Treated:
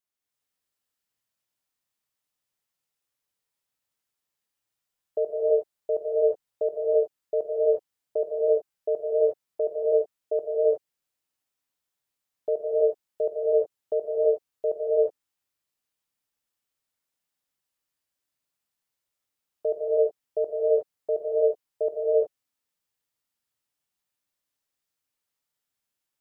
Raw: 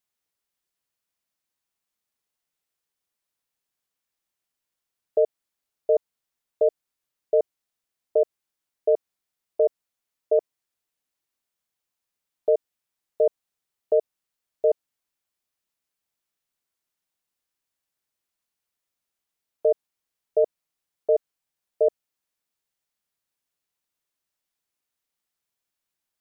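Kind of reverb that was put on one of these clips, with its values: gated-style reverb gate 390 ms rising, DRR -5 dB; trim -6.5 dB

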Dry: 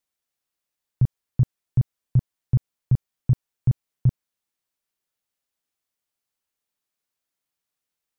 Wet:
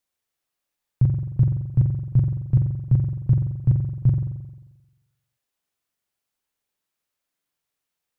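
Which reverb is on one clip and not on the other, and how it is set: spring tank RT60 1.1 s, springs 44 ms, chirp 40 ms, DRR 2 dB; trim +1 dB

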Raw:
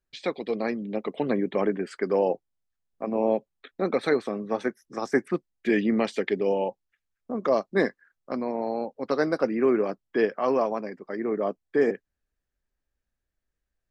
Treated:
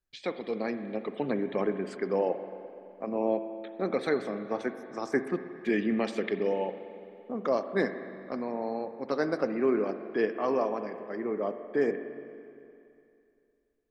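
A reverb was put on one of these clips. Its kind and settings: spring tank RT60 2.6 s, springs 42/57 ms, chirp 80 ms, DRR 9 dB; trim -4.5 dB

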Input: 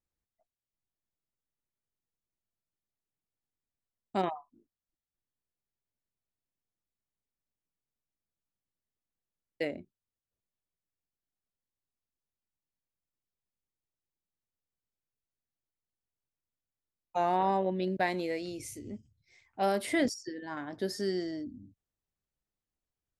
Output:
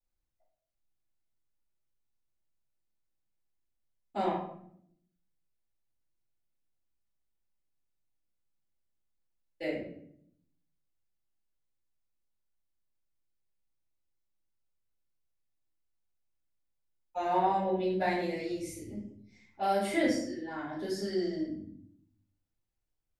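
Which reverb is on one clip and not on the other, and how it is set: simulated room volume 120 m³, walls mixed, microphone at 4.1 m; trim -14 dB

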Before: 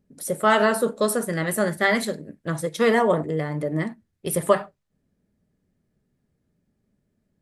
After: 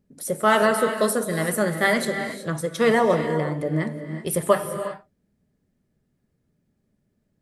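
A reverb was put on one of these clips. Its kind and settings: gated-style reverb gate 400 ms rising, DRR 8 dB

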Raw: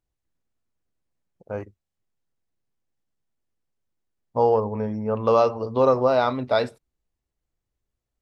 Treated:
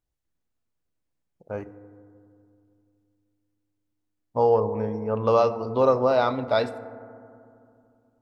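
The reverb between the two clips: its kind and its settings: FDN reverb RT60 2.5 s, low-frequency decay 1.4×, high-frequency decay 0.25×, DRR 12.5 dB; trim -1.5 dB

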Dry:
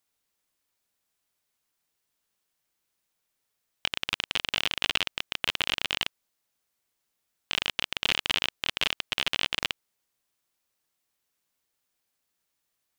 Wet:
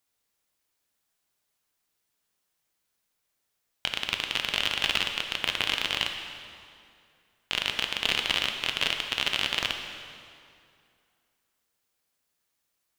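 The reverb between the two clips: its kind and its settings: plate-style reverb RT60 2.4 s, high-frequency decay 0.8×, DRR 4 dB

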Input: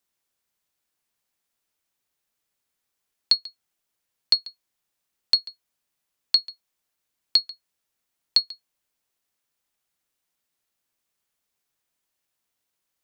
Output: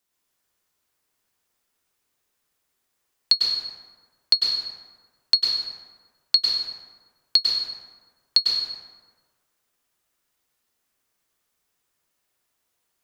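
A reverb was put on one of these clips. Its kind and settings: plate-style reverb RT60 1.5 s, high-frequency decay 0.5×, pre-delay 90 ms, DRR -3.5 dB; trim +1 dB

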